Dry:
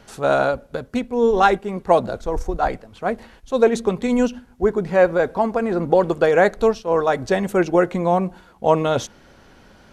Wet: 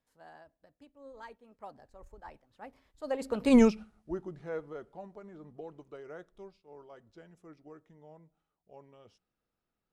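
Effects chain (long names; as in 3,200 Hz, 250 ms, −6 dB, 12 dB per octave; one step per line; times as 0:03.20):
source passing by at 0:03.56, 49 m/s, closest 3 metres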